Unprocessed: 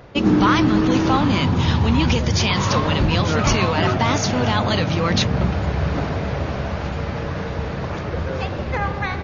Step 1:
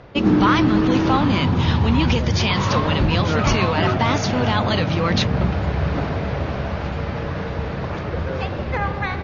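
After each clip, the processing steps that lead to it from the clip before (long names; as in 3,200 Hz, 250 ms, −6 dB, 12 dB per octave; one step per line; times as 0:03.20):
low-pass filter 5,000 Hz 12 dB per octave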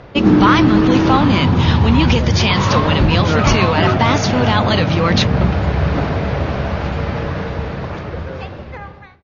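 fade-out on the ending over 2.09 s
level +5 dB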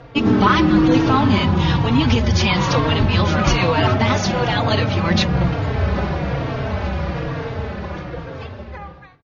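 barber-pole flanger 3.8 ms −1.1 Hz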